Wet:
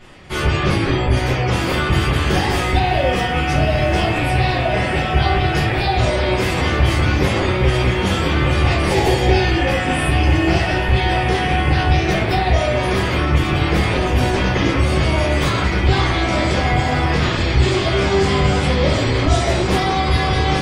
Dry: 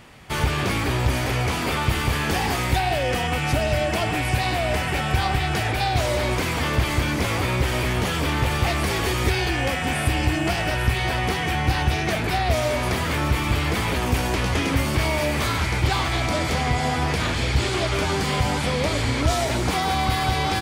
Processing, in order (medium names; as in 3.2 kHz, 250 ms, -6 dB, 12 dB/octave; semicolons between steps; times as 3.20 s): spectral gate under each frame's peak -30 dB strong; 8.89–9.38 s: graphic EQ with 31 bands 500 Hz +6 dB, 800 Hz +11 dB, 1.25 kHz -11 dB; echo that smears into a reverb 1485 ms, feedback 48%, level -11.5 dB; simulated room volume 44 m³, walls mixed, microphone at 1.3 m; trim -3 dB